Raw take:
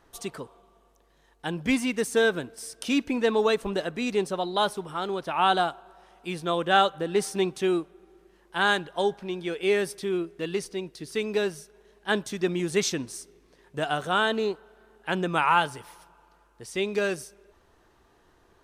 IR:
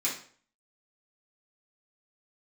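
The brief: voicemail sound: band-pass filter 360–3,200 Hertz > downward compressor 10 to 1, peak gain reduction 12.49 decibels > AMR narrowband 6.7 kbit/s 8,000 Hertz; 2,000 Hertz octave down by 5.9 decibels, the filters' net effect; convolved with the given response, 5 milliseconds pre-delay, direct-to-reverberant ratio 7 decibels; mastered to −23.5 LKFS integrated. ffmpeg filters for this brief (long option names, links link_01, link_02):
-filter_complex "[0:a]equalizer=frequency=2000:width_type=o:gain=-8,asplit=2[link_01][link_02];[1:a]atrim=start_sample=2205,adelay=5[link_03];[link_02][link_03]afir=irnorm=-1:irlink=0,volume=-13.5dB[link_04];[link_01][link_04]amix=inputs=2:normalize=0,highpass=360,lowpass=3200,acompressor=threshold=-29dB:ratio=10,volume=13dB" -ar 8000 -c:a libopencore_amrnb -b:a 6700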